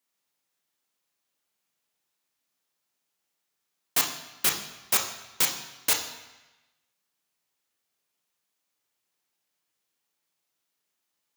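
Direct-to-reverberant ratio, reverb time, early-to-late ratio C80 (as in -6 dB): 3.0 dB, 1.1 s, 10.0 dB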